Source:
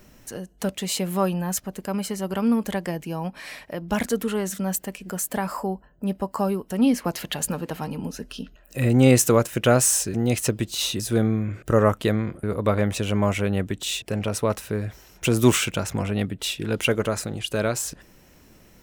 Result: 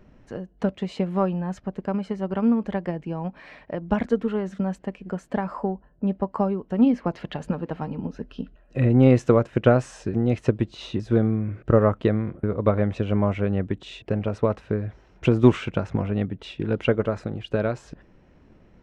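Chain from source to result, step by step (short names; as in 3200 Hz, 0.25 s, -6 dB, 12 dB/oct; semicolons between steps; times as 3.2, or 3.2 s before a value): tape spacing loss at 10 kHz 36 dB; transient shaper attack +5 dB, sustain 0 dB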